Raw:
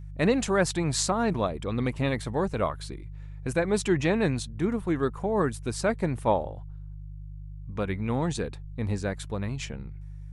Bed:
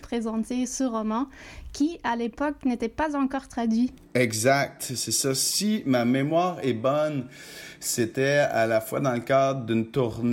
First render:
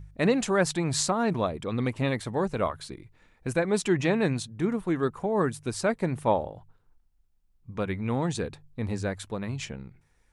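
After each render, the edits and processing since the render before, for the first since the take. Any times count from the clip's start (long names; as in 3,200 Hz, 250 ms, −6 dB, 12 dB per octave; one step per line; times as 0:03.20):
hum removal 50 Hz, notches 3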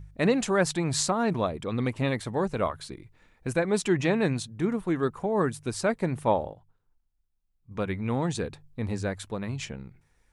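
0:06.54–0:07.71: clip gain −8 dB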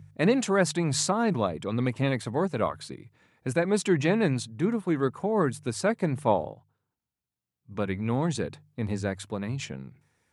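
high-pass filter 97 Hz 24 dB per octave
low-shelf EQ 170 Hz +3 dB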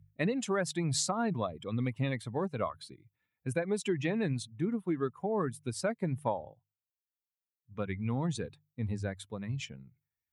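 spectral dynamics exaggerated over time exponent 1.5
downward compressor 10 to 1, threshold −27 dBFS, peak gain reduction 9.5 dB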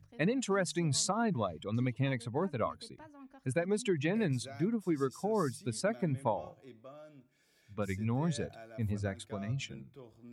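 mix in bed −28 dB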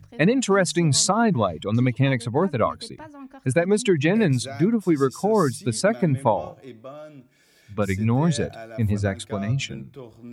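level +12 dB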